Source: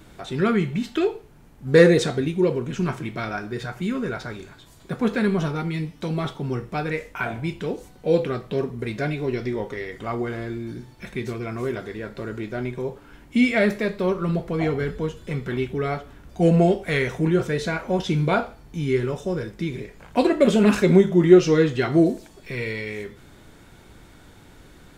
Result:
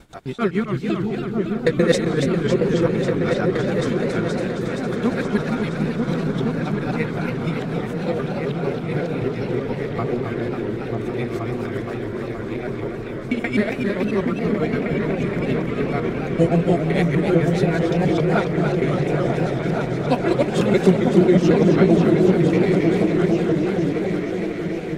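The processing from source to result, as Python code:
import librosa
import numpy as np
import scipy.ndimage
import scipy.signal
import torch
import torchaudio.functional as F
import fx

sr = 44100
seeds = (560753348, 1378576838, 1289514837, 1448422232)

p1 = fx.local_reverse(x, sr, ms=128.0)
p2 = p1 * (1.0 - 0.79 / 2.0 + 0.79 / 2.0 * np.cos(2.0 * np.pi * 6.7 * (np.arange(len(p1)) / sr)))
p3 = p2 + fx.echo_opening(p2, sr, ms=472, hz=200, octaves=2, feedback_pct=70, wet_db=0, dry=0)
p4 = fx.echo_warbled(p3, sr, ms=275, feedback_pct=79, rate_hz=2.8, cents=183, wet_db=-6.5)
y = p4 * librosa.db_to_amplitude(1.5)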